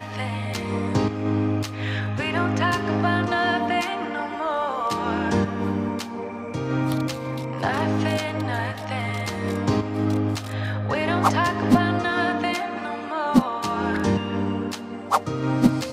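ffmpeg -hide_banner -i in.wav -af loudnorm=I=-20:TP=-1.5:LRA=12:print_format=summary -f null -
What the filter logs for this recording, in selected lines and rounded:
Input Integrated:    -24.1 LUFS
Input True Peak:      -3.8 dBTP
Input LRA:             2.8 LU
Input Threshold:     -34.1 LUFS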